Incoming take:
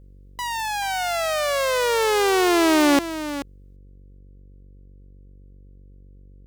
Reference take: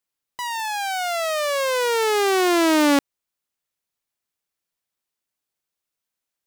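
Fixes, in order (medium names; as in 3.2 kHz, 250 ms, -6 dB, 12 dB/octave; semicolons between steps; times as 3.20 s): de-hum 47.8 Hz, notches 11; inverse comb 432 ms -12 dB; gain correction +11.5 dB, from 3.76 s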